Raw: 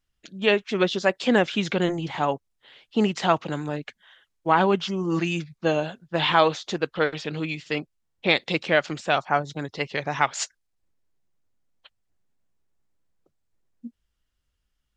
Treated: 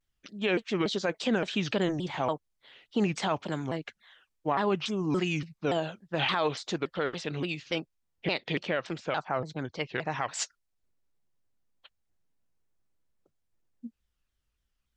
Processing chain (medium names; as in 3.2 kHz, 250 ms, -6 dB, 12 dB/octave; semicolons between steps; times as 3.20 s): 8.28–10.20 s: distance through air 100 m; peak limiter -13.5 dBFS, peak gain reduction 9 dB; vibrato with a chosen wave saw down 3.5 Hz, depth 250 cents; trim -3.5 dB